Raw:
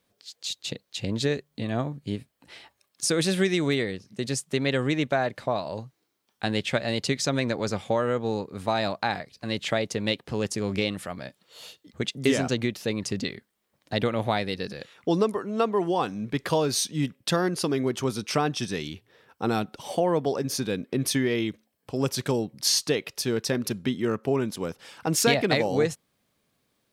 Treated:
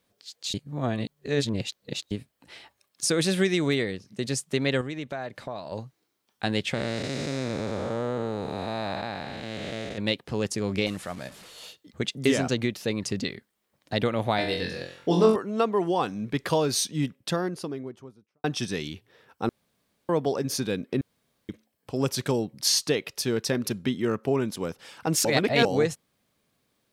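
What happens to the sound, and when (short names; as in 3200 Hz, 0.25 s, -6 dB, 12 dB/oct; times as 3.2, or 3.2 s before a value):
0.54–2.11 reverse
4.81–5.72 compressor 2:1, threshold -37 dBFS
6.74–9.98 time blur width 0.474 s
10.86–11.65 delta modulation 64 kbps, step -42 dBFS
14.36–15.36 flutter echo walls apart 3.9 m, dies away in 0.49 s
16.81–18.44 studio fade out
19.49–20.09 room tone
21.01–21.49 room tone
25.25–25.65 reverse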